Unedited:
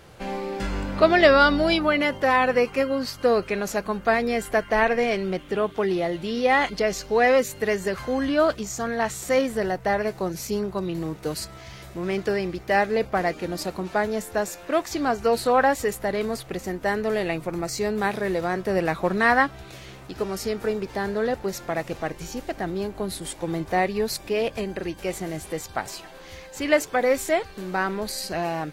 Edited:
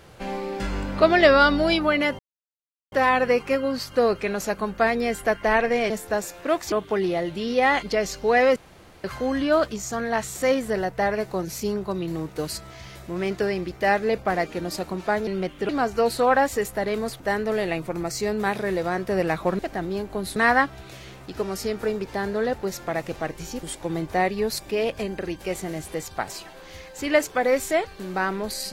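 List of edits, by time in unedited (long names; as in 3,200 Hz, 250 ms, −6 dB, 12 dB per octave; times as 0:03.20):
0:02.19: splice in silence 0.73 s
0:05.17–0:05.59: swap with 0:14.14–0:14.96
0:07.43–0:07.91: fill with room tone
0:16.47–0:16.78: remove
0:22.44–0:23.21: move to 0:19.17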